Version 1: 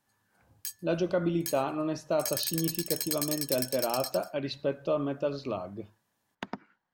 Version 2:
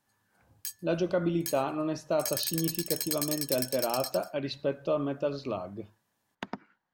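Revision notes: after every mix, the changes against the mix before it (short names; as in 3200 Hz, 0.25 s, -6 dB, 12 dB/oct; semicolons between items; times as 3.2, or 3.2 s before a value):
none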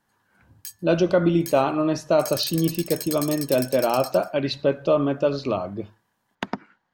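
speech +9.0 dB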